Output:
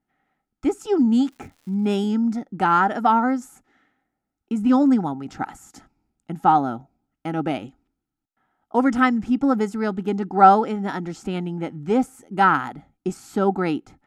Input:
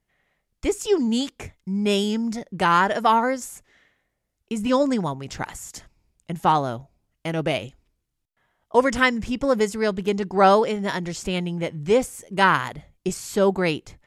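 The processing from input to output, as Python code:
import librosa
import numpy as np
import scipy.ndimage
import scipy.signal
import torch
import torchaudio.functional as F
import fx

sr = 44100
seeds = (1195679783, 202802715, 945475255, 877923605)

y = fx.small_body(x, sr, hz=(270.0, 790.0, 1300.0), ring_ms=25, db=18)
y = fx.dmg_crackle(y, sr, seeds[0], per_s=210.0, level_db=-34.0, at=(1.3, 1.96), fade=0.02)
y = F.gain(torch.from_numpy(y), -10.5).numpy()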